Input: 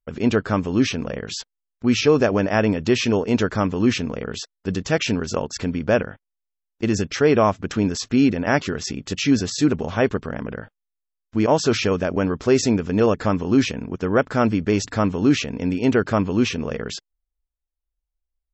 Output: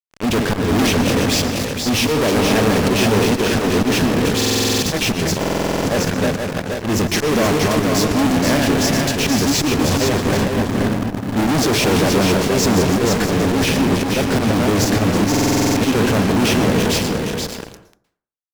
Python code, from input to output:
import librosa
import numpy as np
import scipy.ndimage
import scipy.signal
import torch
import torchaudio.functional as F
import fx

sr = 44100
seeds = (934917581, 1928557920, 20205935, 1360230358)

p1 = fx.reverse_delay_fb(x, sr, ms=165, feedback_pct=51, wet_db=-9.0)
p2 = fx.low_shelf_res(p1, sr, hz=390.0, db=9.5, q=3.0, at=(10.53, 11.63))
p3 = fx.auto_swell(p2, sr, attack_ms=206.0)
p4 = fx.sample_hold(p3, sr, seeds[0], rate_hz=1400.0, jitter_pct=0)
p5 = p3 + (p4 * 10.0 ** (-8.0 / 20.0))
p6 = fx.peak_eq(p5, sr, hz=1300.0, db=-11.0, octaves=0.22)
p7 = fx.fuzz(p6, sr, gain_db=36.0, gate_db=-34.0)
p8 = p7 + fx.echo_single(p7, sr, ms=477, db=-4.5, dry=0)
p9 = fx.rev_plate(p8, sr, seeds[1], rt60_s=0.53, hf_ratio=0.55, predelay_ms=105, drr_db=11.0)
p10 = fx.buffer_glitch(p9, sr, at_s=(4.36, 5.39, 15.3), block=2048, repeats=9)
y = p10 * 10.0 ** (-2.0 / 20.0)